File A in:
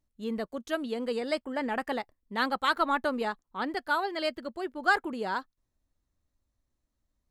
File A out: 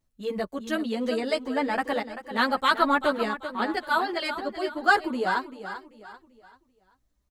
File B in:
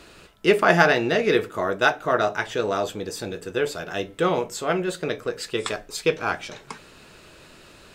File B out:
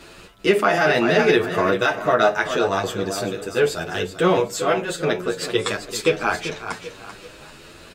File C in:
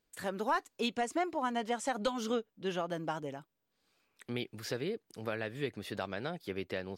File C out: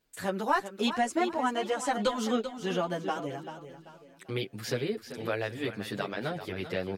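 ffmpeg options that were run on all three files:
-filter_complex "[0:a]aecho=1:1:389|778|1167|1556:0.282|0.101|0.0365|0.0131,alimiter=level_in=3.35:limit=0.891:release=50:level=0:latency=1,asplit=2[s0][s1];[s1]adelay=8.9,afreqshift=0.76[s2];[s0][s2]amix=inputs=2:normalize=1,volume=0.708"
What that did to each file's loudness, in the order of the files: +4.5 LU, +2.5 LU, +5.0 LU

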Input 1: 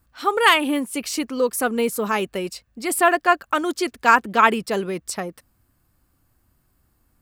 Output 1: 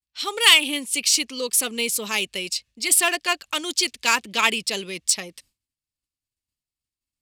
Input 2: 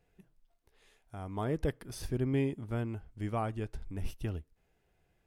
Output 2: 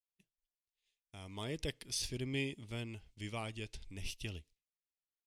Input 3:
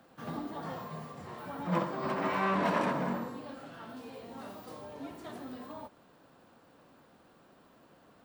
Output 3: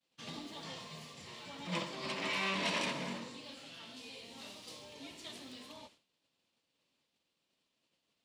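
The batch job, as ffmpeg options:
-filter_complex "[0:a]bandreject=f=740:w=14,agate=range=0.0224:threshold=0.00355:ratio=3:detection=peak,acrossover=split=680[s0][s1];[s1]adynamicsmooth=sensitivity=3:basefreq=6600[s2];[s0][s2]amix=inputs=2:normalize=0,aexciter=amount=7:drive=7.6:freq=2200,volume=0.376"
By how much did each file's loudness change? 0.0 LU, -5.5 LU, -4.5 LU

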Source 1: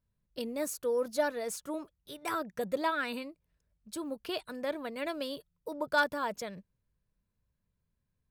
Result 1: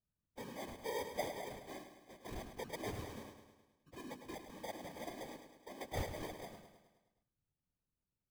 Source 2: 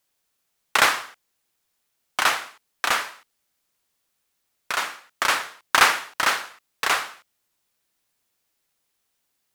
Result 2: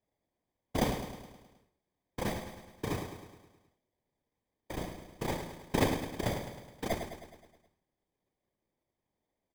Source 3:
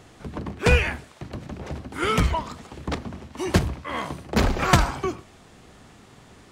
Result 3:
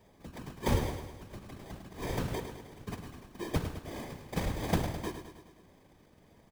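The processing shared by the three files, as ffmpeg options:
-af "acrusher=samples=32:mix=1:aa=0.000001,afftfilt=real='hypot(re,im)*cos(2*PI*random(0))':imag='hypot(re,im)*sin(2*PI*random(1))':win_size=512:overlap=0.75,aecho=1:1:105|210|315|420|525|630|735:0.355|0.202|0.115|0.0657|0.0375|0.0213|0.0122,volume=0.501"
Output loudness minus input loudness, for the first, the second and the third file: -11.5 LU, -14.0 LU, -12.5 LU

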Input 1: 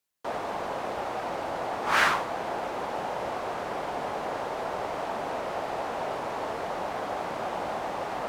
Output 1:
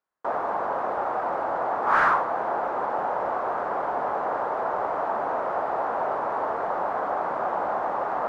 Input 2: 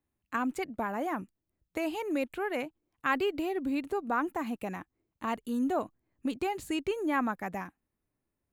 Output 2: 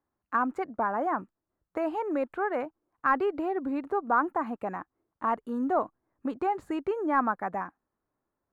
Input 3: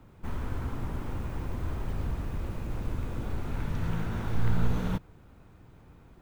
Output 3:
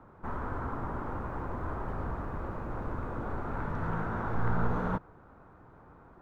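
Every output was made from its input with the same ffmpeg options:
-filter_complex "[0:a]asplit=2[s0][s1];[s1]highpass=f=720:p=1,volume=3.98,asoftclip=type=tanh:threshold=0.335[s2];[s0][s2]amix=inputs=2:normalize=0,lowpass=f=1900:p=1,volume=0.501,highshelf=f=1900:t=q:w=1.5:g=-11"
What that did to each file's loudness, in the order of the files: +4.5 LU, +3.0 LU, -1.5 LU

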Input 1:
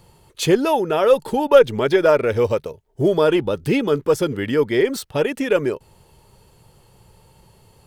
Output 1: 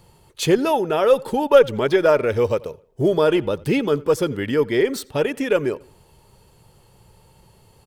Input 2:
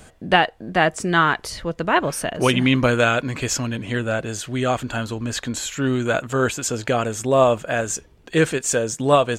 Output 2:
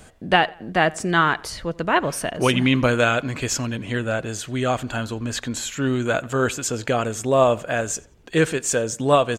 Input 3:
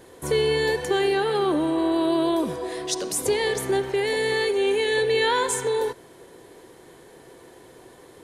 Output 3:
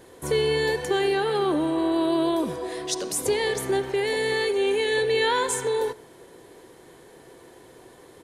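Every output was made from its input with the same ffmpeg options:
-filter_complex "[0:a]asplit=2[s0][s1];[s1]adelay=88,lowpass=f=4200:p=1,volume=0.0708,asplit=2[s2][s3];[s3]adelay=88,lowpass=f=4200:p=1,volume=0.42,asplit=2[s4][s5];[s5]adelay=88,lowpass=f=4200:p=1,volume=0.42[s6];[s0][s2][s4][s6]amix=inputs=4:normalize=0,volume=0.891"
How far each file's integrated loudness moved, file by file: -1.0 LU, -1.0 LU, -1.0 LU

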